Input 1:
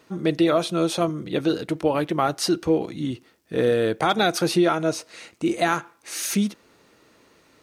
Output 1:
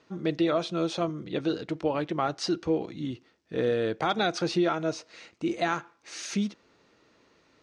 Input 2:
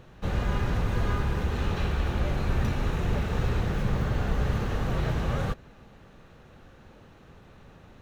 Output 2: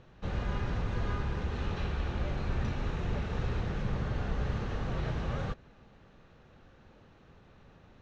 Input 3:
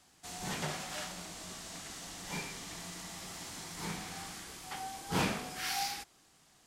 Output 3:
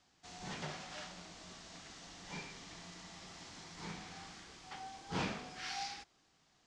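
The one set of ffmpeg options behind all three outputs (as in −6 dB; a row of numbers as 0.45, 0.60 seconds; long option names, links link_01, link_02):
-af "lowpass=frequency=6400:width=0.5412,lowpass=frequency=6400:width=1.3066,volume=-6dB"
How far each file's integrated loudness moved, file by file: −6.0, −6.0, −7.0 LU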